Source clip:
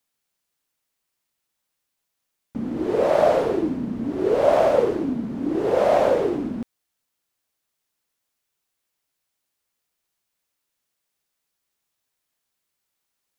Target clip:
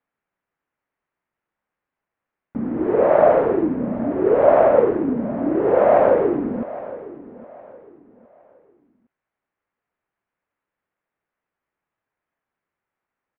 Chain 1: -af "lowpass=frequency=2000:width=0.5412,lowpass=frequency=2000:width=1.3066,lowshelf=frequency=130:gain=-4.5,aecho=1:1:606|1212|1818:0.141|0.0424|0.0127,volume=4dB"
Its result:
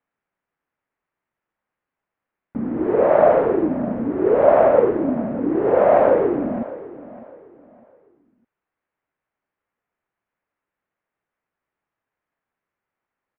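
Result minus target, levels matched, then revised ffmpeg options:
echo 207 ms early
-af "lowpass=frequency=2000:width=0.5412,lowpass=frequency=2000:width=1.3066,lowshelf=frequency=130:gain=-4.5,aecho=1:1:813|1626|2439:0.141|0.0424|0.0127,volume=4dB"

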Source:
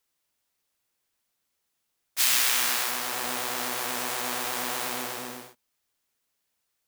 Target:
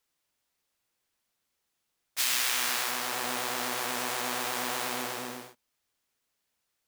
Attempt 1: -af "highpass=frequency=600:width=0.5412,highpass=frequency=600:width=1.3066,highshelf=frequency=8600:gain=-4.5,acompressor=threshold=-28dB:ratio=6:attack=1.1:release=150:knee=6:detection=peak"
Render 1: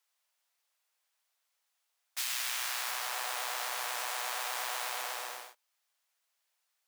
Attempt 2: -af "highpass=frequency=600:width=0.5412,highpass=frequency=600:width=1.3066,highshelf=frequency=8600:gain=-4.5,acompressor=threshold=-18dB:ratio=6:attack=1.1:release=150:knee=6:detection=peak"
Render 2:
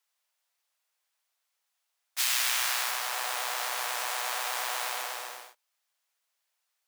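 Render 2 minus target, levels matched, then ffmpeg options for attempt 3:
500 Hz band −5.0 dB
-af "highshelf=frequency=8600:gain=-4.5,acompressor=threshold=-18dB:ratio=6:attack=1.1:release=150:knee=6:detection=peak"

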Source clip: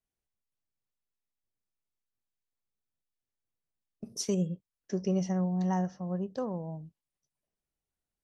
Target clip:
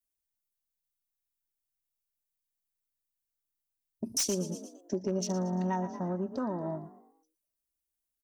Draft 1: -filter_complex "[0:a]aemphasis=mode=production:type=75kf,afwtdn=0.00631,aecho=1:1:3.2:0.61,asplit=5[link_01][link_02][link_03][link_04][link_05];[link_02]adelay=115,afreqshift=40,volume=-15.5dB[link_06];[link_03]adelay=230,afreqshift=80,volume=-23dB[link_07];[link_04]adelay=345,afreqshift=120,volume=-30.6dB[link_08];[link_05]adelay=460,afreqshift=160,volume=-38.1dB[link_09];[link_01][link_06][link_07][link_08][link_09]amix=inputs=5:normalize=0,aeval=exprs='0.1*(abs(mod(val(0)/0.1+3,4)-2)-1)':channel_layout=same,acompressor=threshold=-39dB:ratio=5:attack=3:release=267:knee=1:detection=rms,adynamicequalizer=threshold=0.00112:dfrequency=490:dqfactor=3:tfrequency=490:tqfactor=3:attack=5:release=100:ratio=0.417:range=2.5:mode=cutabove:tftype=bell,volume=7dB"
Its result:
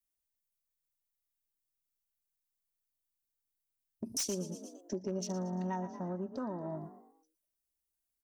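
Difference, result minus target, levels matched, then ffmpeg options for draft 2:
downward compressor: peak gain reduction +5 dB
-filter_complex "[0:a]aemphasis=mode=production:type=75kf,afwtdn=0.00631,aecho=1:1:3.2:0.61,asplit=5[link_01][link_02][link_03][link_04][link_05];[link_02]adelay=115,afreqshift=40,volume=-15.5dB[link_06];[link_03]adelay=230,afreqshift=80,volume=-23dB[link_07];[link_04]adelay=345,afreqshift=120,volume=-30.6dB[link_08];[link_05]adelay=460,afreqshift=160,volume=-38.1dB[link_09];[link_01][link_06][link_07][link_08][link_09]amix=inputs=5:normalize=0,aeval=exprs='0.1*(abs(mod(val(0)/0.1+3,4)-2)-1)':channel_layout=same,acompressor=threshold=-32.5dB:ratio=5:attack=3:release=267:knee=1:detection=rms,adynamicequalizer=threshold=0.00112:dfrequency=490:dqfactor=3:tfrequency=490:tqfactor=3:attack=5:release=100:ratio=0.417:range=2.5:mode=cutabove:tftype=bell,volume=7dB"

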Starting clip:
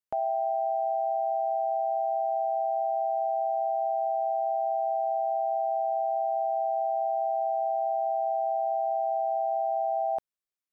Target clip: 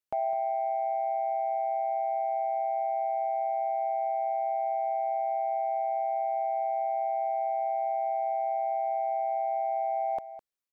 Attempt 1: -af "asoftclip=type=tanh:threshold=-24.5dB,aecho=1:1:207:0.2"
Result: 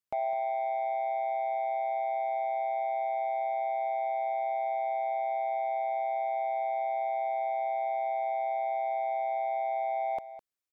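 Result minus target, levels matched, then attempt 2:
soft clipping: distortion +10 dB
-af "asoftclip=type=tanh:threshold=-18.5dB,aecho=1:1:207:0.2"

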